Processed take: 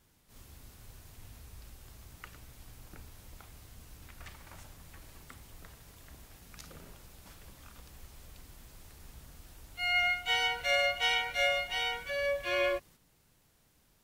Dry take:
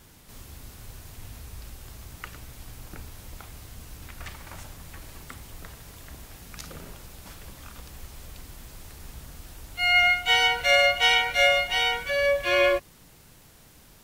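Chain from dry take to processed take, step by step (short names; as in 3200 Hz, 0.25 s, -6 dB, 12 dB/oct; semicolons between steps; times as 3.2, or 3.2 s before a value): gate -46 dBFS, range -6 dB; gain -9 dB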